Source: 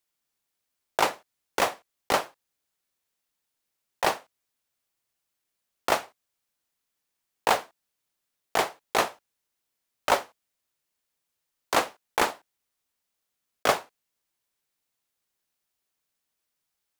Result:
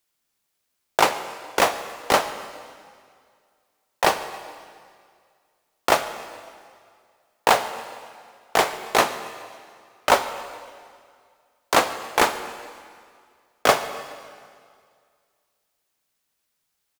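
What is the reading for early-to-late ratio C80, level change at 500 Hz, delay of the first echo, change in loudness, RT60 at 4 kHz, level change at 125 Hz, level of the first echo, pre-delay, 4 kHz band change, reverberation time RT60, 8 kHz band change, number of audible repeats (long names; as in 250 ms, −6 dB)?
12.0 dB, +6.0 dB, 139 ms, +5.0 dB, 1.9 s, +6.0 dB, −22.0 dB, 6 ms, +6.0 dB, 2.1 s, +6.0 dB, 2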